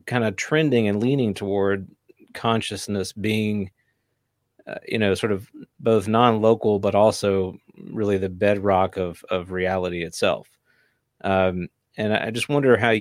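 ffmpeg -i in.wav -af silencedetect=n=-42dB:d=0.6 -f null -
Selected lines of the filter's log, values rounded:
silence_start: 3.68
silence_end: 4.60 | silence_duration: 0.91
silence_start: 10.42
silence_end: 11.21 | silence_duration: 0.79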